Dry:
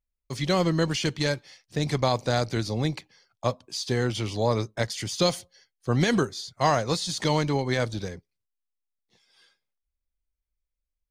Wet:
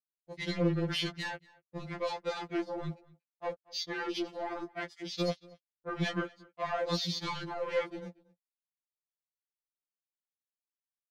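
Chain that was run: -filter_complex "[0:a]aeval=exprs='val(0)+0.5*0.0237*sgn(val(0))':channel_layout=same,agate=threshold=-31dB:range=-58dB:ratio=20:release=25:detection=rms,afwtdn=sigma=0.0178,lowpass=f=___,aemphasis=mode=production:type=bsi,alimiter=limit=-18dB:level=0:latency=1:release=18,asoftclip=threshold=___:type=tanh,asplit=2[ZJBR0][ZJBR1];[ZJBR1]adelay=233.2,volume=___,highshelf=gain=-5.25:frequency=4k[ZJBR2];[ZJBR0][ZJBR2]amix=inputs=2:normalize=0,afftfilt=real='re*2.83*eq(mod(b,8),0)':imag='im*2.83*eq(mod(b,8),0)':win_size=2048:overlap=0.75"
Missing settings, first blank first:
3.1k, -23dB, -23dB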